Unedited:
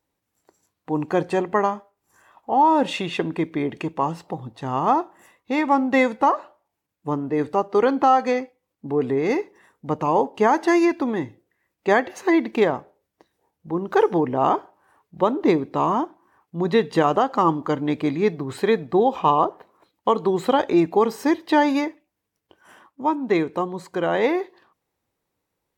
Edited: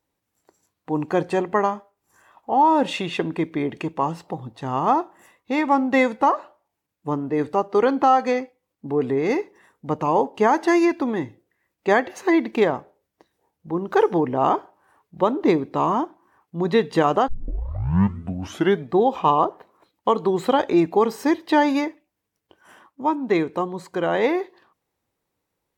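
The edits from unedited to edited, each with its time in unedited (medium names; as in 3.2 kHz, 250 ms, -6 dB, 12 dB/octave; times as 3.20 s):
17.28 s: tape start 1.62 s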